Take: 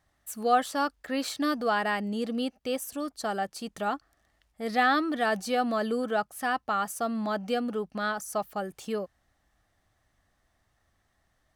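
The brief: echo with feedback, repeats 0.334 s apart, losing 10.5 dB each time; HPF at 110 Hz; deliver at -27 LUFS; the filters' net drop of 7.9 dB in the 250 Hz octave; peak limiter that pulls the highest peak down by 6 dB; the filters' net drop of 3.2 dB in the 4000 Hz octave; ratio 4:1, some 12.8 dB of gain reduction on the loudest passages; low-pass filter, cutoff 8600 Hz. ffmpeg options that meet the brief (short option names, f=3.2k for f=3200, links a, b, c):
-af "highpass=110,lowpass=8.6k,equalizer=f=250:t=o:g=-9,equalizer=f=4k:t=o:g=-4,acompressor=threshold=-34dB:ratio=4,alimiter=level_in=5dB:limit=-24dB:level=0:latency=1,volume=-5dB,aecho=1:1:334|668|1002:0.299|0.0896|0.0269,volume=12.5dB"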